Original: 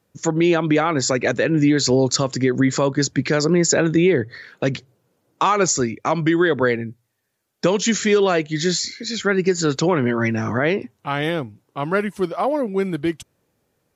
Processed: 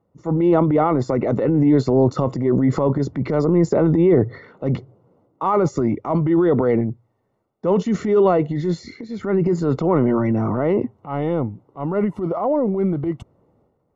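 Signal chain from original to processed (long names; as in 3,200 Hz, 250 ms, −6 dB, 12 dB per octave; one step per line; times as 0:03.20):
transient designer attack −9 dB, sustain +8 dB
Savitzky-Golay smoothing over 65 samples
level +2 dB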